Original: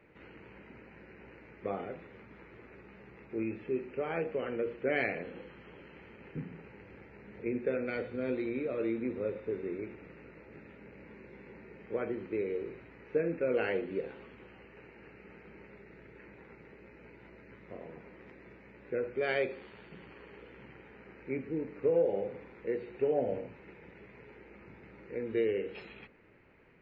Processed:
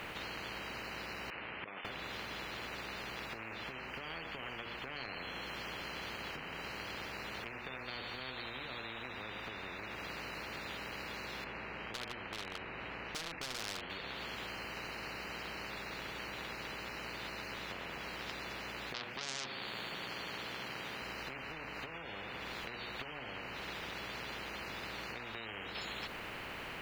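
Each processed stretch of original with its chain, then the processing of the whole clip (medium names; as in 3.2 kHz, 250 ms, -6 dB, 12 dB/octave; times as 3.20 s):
1.30–1.85 s: compressor with a negative ratio -46 dBFS + band-pass filter 2.4 kHz, Q 2.5 + distance through air 420 m
11.44–13.90 s: low-pass 1.1 kHz 6 dB/octave + overload inside the chain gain 29.5 dB
18.94–21.02 s: high-pass 130 Hz 24 dB/octave + transformer saturation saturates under 1.9 kHz
whole clip: dynamic bell 3.3 kHz, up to +6 dB, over -54 dBFS, Q 0.85; compression 12:1, threshold -45 dBFS; spectrum-flattening compressor 10:1; trim +12 dB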